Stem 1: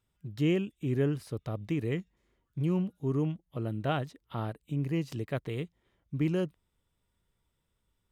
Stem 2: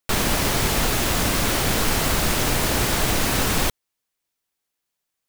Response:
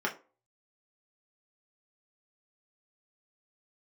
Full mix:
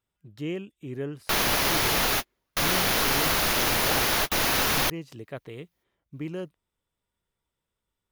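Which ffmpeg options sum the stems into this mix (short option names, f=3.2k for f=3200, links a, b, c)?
-filter_complex "[0:a]tiltshelf=f=930:g=3,volume=-0.5dB,asplit=2[a][b];[1:a]equalizer=f=8k:t=o:w=0.27:g=-14,adelay=1200,volume=0.5dB[c];[b]apad=whole_len=285913[d];[c][d]sidechaingate=range=-59dB:threshold=-56dB:ratio=16:detection=peak[e];[a][e]amix=inputs=2:normalize=0,lowshelf=f=340:g=-12"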